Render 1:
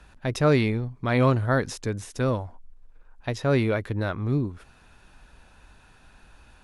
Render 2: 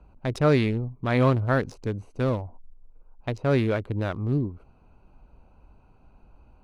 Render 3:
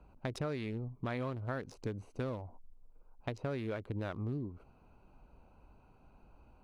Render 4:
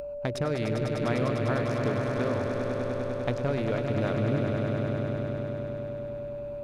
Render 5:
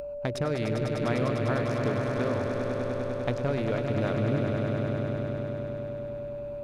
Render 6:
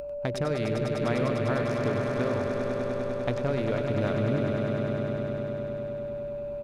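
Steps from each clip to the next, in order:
local Wiener filter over 25 samples
bass shelf 110 Hz -5.5 dB; compression 12:1, threshold -31 dBFS, peak gain reduction 15 dB; trim -3 dB
echo with a slow build-up 100 ms, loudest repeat 5, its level -7.5 dB; whistle 580 Hz -41 dBFS; upward compressor, threshold -49 dBFS; trim +7 dB
no audible change
delay 95 ms -10.5 dB

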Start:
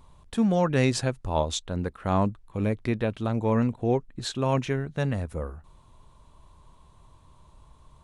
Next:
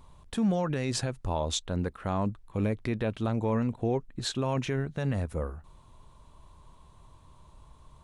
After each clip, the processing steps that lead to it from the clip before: peak limiter -19.5 dBFS, peak gain reduction 10.5 dB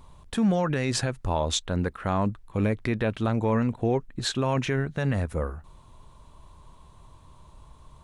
dynamic bell 1.7 kHz, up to +4 dB, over -50 dBFS, Q 1.2; trim +3.5 dB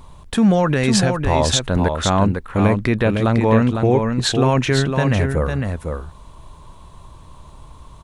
delay 504 ms -5.5 dB; trim +8.5 dB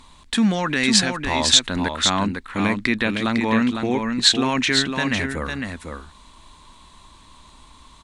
graphic EQ 125/250/500/1000/2000/4000/8000 Hz -8/+10/-4/+4/+10/+12/+10 dB; trim -9 dB

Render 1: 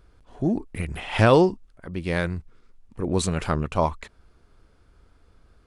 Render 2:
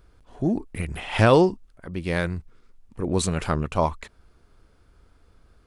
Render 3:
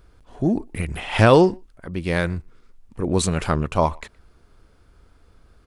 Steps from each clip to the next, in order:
treble shelf 9.8 kHz +4 dB
speakerphone echo 120 ms, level -27 dB; trim +3 dB

